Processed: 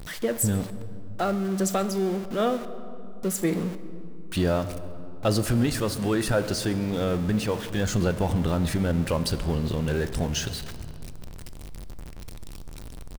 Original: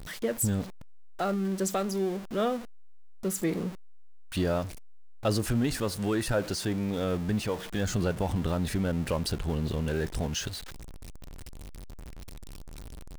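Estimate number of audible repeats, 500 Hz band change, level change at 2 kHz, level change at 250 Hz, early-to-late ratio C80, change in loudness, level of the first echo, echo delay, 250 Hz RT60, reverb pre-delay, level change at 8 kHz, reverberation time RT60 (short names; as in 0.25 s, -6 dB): 1, +4.0 dB, +4.0 dB, +4.0 dB, 13.5 dB, +4.0 dB, -22.5 dB, 0.135 s, 3.6 s, 6 ms, +3.5 dB, 2.8 s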